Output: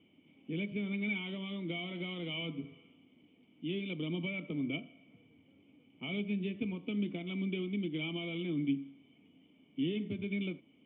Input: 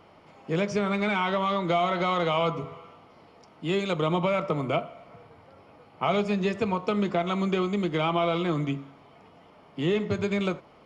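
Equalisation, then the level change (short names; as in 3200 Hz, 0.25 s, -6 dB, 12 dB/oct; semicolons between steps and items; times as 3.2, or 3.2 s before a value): vocal tract filter i; HPF 89 Hz; high shelf 2200 Hz +11 dB; 0.0 dB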